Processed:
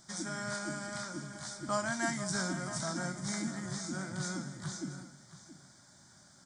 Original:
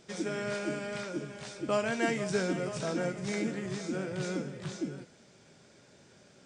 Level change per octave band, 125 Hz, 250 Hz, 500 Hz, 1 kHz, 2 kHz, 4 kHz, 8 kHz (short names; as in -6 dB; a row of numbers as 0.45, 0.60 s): -1.5, -4.0, -9.0, 0.0, -1.5, +0.5, +6.0 dB